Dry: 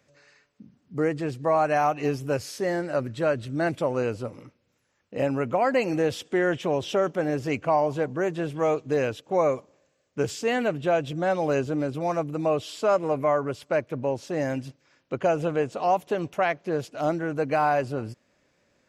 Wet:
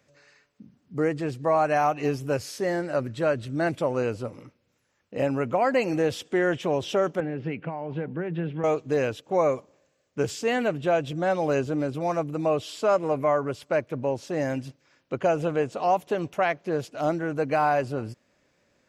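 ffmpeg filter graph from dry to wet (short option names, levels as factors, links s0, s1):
-filter_complex "[0:a]asettb=1/sr,asplit=3[s0][s1][s2];[s0]atrim=end=7.204[s3];[s1]atrim=start=7.2:end=8.64,asetpts=PTS-STARTPTS,afade=t=in:d=0.004:c=qsin,afade=t=out:st=1.436:d=0.004:c=qsin,acompressor=threshold=0.0501:ratio=6:attack=3.2:release=140:knee=1:detection=peak,highpass=130,equalizer=f=170:t=q:w=4:g=9,equalizer=f=650:t=q:w=4:g=-7,equalizer=f=1100:t=q:w=4:g=-7,lowpass=f=3100:w=0.5412,lowpass=f=3100:w=1.3066[s4];[s2]atrim=start=8.636[s5];[s3][s4]acrossfade=d=0.004:c1=hsin:c2=qsin[s6];[s6][s5]acrossfade=d=0.004:c1=qsin:c2=hsin"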